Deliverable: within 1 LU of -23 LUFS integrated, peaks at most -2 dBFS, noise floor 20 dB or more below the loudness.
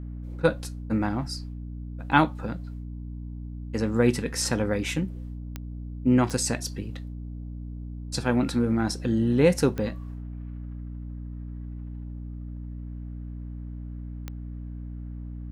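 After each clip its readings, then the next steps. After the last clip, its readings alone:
clicks 4; hum 60 Hz; harmonics up to 300 Hz; hum level -34 dBFS; loudness -29.0 LUFS; peak -4.0 dBFS; loudness target -23.0 LUFS
-> de-click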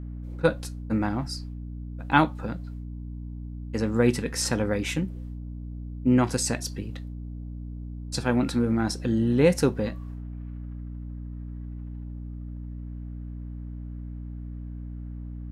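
clicks 0; hum 60 Hz; harmonics up to 300 Hz; hum level -34 dBFS
-> notches 60/120/180/240/300 Hz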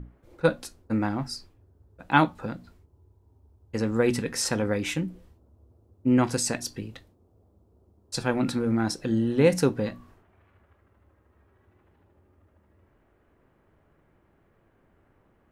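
hum none; loudness -26.5 LUFS; peak -4.5 dBFS; loudness target -23.0 LUFS
-> gain +3.5 dB; limiter -2 dBFS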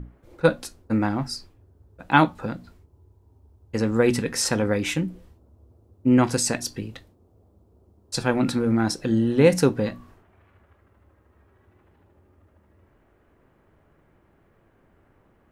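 loudness -23.0 LUFS; peak -2.0 dBFS; noise floor -62 dBFS

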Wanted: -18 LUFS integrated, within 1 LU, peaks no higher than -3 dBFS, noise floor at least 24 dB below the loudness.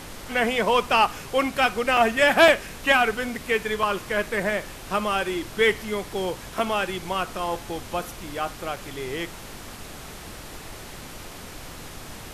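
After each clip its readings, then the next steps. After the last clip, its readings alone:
dropouts 5; longest dropout 3.0 ms; noise floor -40 dBFS; noise floor target -48 dBFS; loudness -23.5 LUFS; peak -5.5 dBFS; loudness target -18.0 LUFS
-> interpolate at 1.97/2.48/3.83/6.59/8.76, 3 ms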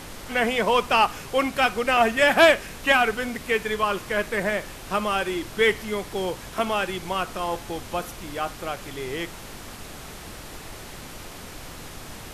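dropouts 0; noise floor -40 dBFS; noise floor target -48 dBFS
-> noise print and reduce 8 dB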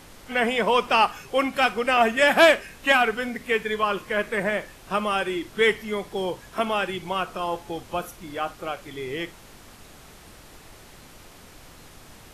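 noise floor -48 dBFS; loudness -23.5 LUFS; peak -6.0 dBFS; loudness target -18.0 LUFS
-> gain +5.5 dB; limiter -3 dBFS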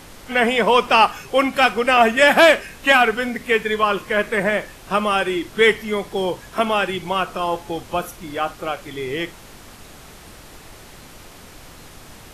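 loudness -18.5 LUFS; peak -3.0 dBFS; noise floor -43 dBFS

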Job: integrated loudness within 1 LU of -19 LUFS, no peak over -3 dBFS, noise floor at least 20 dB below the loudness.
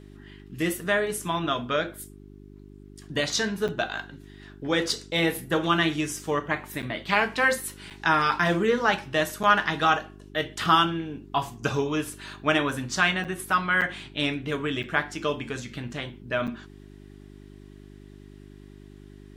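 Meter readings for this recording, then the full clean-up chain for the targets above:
dropouts 8; longest dropout 7.4 ms; hum 50 Hz; harmonics up to 400 Hz; hum level -46 dBFS; loudness -26.0 LUFS; peak -5.5 dBFS; loudness target -19.0 LUFS
-> interpolate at 3.68/6.82/7.9/9.43/13.24/13.81/14.83/16.47, 7.4 ms; de-hum 50 Hz, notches 8; gain +7 dB; limiter -3 dBFS

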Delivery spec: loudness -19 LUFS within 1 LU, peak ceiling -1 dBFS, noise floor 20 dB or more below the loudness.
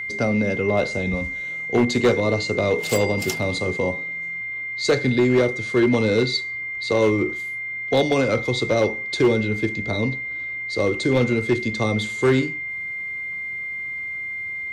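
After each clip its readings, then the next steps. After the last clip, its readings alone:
clipped 0.8%; flat tops at -11.5 dBFS; steady tone 2100 Hz; tone level -27 dBFS; loudness -22.0 LUFS; peak -11.5 dBFS; loudness target -19.0 LUFS
-> clip repair -11.5 dBFS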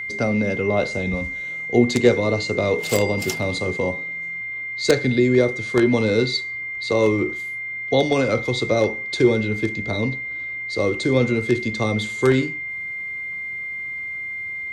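clipped 0.0%; steady tone 2100 Hz; tone level -27 dBFS
-> notch 2100 Hz, Q 30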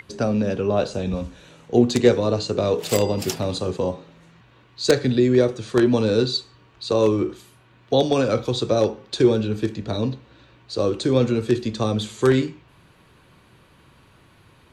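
steady tone none; loudness -21.5 LUFS; peak -2.0 dBFS; loudness target -19.0 LUFS
-> gain +2.5 dB; limiter -1 dBFS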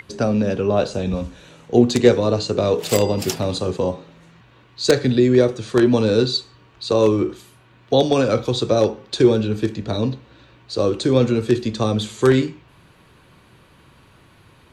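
loudness -19.0 LUFS; peak -1.0 dBFS; noise floor -52 dBFS

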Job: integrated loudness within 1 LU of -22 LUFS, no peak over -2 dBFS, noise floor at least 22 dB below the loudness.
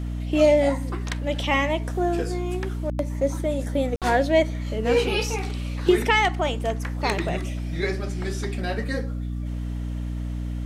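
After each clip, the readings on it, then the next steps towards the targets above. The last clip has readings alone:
dropouts 1; longest dropout 57 ms; hum 60 Hz; harmonics up to 300 Hz; hum level -26 dBFS; loudness -24.5 LUFS; peak -7.0 dBFS; loudness target -22.0 LUFS
-> interpolate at 3.96, 57 ms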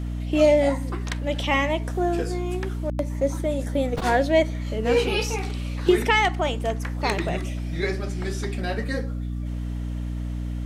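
dropouts 0; hum 60 Hz; harmonics up to 300 Hz; hum level -26 dBFS
-> de-hum 60 Hz, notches 5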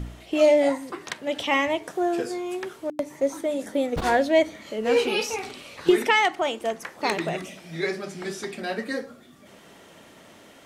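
hum none; loudness -25.0 LUFS; peak -8.5 dBFS; loudness target -22.0 LUFS
-> gain +3 dB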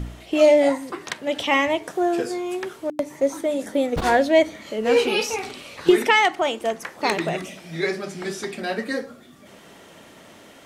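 loudness -22.0 LUFS; peak -5.5 dBFS; noise floor -47 dBFS

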